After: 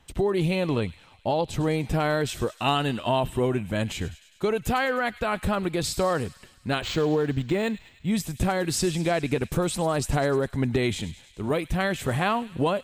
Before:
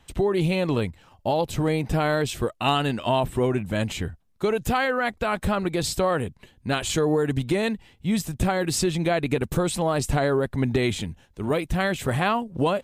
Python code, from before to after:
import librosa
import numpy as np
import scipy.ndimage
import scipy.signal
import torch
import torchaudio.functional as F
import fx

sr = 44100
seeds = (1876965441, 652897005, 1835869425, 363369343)

p1 = fx.lowpass(x, sr, hz=8600.0, slope=12, at=(0.66, 1.54))
p2 = p1 + fx.echo_wet_highpass(p1, sr, ms=102, feedback_pct=66, hz=2500.0, wet_db=-13.5, dry=0)
p3 = fx.resample_linear(p2, sr, factor=4, at=(6.81, 8.1))
y = p3 * librosa.db_to_amplitude(-1.5)